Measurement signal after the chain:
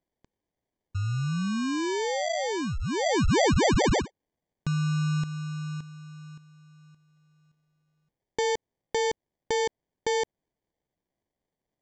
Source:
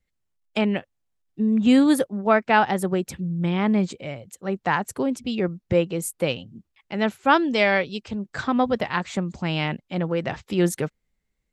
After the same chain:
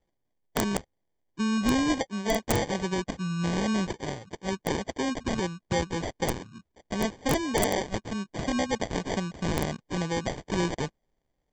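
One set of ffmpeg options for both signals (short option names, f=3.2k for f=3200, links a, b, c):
-af "highshelf=f=2.1k:t=q:w=1.5:g=10.5,aresample=16000,acrusher=samples=12:mix=1:aa=0.000001,aresample=44100,acompressor=threshold=-23dB:ratio=2,aeval=exprs='(mod(3.76*val(0)+1,2)-1)/3.76':c=same,volume=-3dB"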